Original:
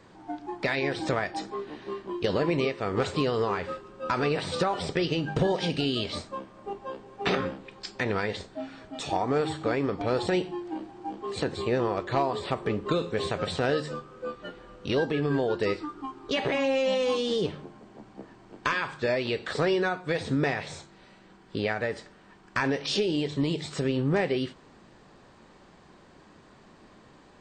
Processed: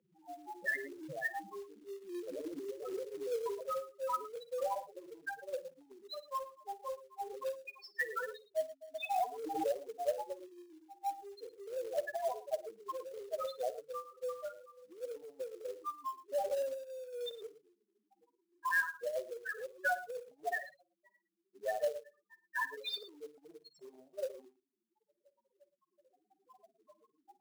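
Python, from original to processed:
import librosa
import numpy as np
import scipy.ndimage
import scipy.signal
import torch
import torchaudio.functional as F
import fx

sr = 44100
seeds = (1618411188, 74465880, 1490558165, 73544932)

y = fx.hum_notches(x, sr, base_hz=60, count=9)
y = fx.spec_topn(y, sr, count=2)
y = fx.over_compress(y, sr, threshold_db=-33.0, ratio=-0.5)
y = fx.filter_sweep_bandpass(y, sr, from_hz=2400.0, to_hz=790.0, start_s=25.62, end_s=26.68, q=2.3)
y = fx.echo_multitap(y, sr, ms=(54, 112), db=(-15.5, -16.0))
y = fx.filter_sweep_highpass(y, sr, from_hz=150.0, to_hz=590.0, start_s=0.97, end_s=4.04, q=4.8)
y = fx.quant_float(y, sr, bits=2)
y = fx.pre_swell(y, sr, db_per_s=39.0, at=(9.14, 9.79))
y = y * 10.0 ** (9.0 / 20.0)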